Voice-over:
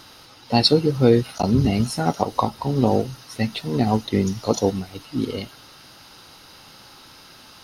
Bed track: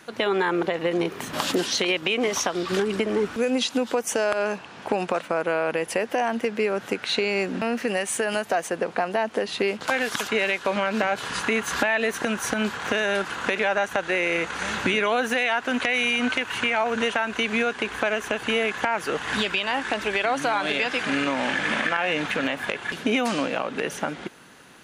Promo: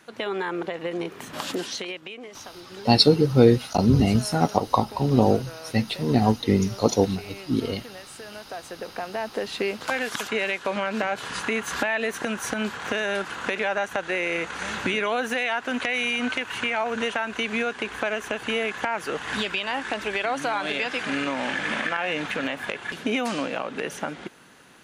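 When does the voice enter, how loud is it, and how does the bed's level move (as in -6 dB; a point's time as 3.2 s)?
2.35 s, 0.0 dB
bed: 1.65 s -5.5 dB
2.26 s -17.5 dB
8.12 s -17.5 dB
9.47 s -2.5 dB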